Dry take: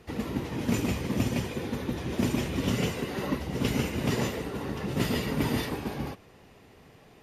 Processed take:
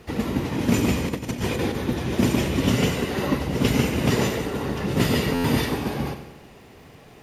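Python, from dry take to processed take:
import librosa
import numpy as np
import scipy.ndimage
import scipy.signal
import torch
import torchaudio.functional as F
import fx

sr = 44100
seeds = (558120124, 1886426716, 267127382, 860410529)

y = fx.dmg_crackle(x, sr, seeds[0], per_s=480.0, level_db=-59.0)
y = fx.over_compress(y, sr, threshold_db=-33.0, ratio=-0.5, at=(1.08, 1.76))
y = fx.echo_feedback(y, sr, ms=92, feedback_pct=55, wet_db=-11)
y = fx.buffer_glitch(y, sr, at_s=(5.34,), block=512, repeats=8)
y = y * librosa.db_to_amplitude(6.5)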